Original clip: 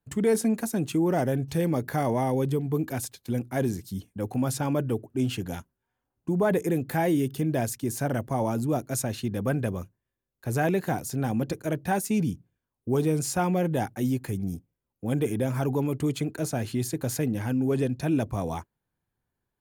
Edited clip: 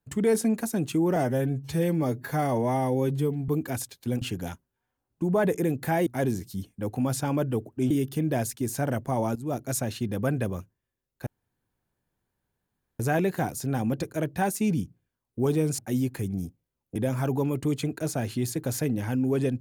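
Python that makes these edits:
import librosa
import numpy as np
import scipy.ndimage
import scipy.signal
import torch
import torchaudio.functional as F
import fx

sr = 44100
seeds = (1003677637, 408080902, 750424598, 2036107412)

y = fx.edit(x, sr, fx.stretch_span(start_s=1.16, length_s=1.55, factor=1.5),
    fx.move(start_s=3.44, length_s=1.84, to_s=7.13),
    fx.fade_in_from(start_s=8.58, length_s=0.25, floor_db=-18.0),
    fx.insert_room_tone(at_s=10.49, length_s=1.73),
    fx.cut(start_s=13.28, length_s=0.6),
    fx.cut(start_s=15.05, length_s=0.28), tone=tone)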